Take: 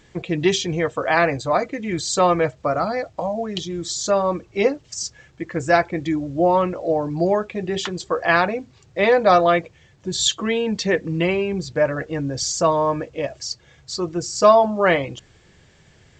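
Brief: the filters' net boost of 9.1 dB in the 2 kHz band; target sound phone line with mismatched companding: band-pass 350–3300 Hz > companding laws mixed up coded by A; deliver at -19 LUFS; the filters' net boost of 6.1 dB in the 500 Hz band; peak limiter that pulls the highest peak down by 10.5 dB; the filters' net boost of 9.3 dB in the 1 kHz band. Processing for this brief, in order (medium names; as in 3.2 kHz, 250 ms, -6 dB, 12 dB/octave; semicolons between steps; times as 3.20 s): peaking EQ 500 Hz +5 dB; peaking EQ 1 kHz +8.5 dB; peaking EQ 2 kHz +8.5 dB; peak limiter -4 dBFS; band-pass 350–3300 Hz; companding laws mixed up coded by A; trim -1.5 dB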